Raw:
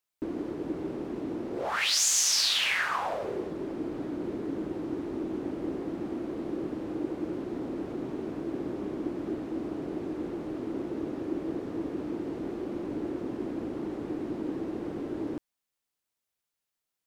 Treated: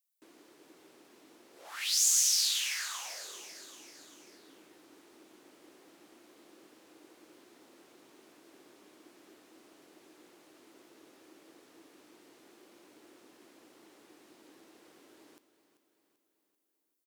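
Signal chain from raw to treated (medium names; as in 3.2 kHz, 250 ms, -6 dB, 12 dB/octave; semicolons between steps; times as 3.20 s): differentiator; feedback delay 389 ms, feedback 53%, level -13 dB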